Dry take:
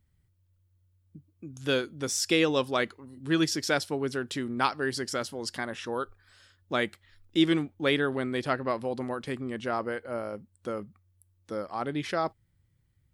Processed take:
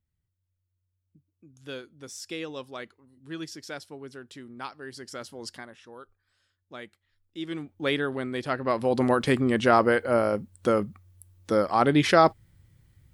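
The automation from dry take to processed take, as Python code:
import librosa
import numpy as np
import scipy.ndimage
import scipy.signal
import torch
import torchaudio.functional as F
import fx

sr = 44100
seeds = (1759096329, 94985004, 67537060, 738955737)

y = fx.gain(x, sr, db=fx.line((4.84, -11.5), (5.46, -3.5), (5.78, -14.0), (7.37, -14.0), (7.78, -1.0), (8.49, -1.0), (9.06, 11.0)))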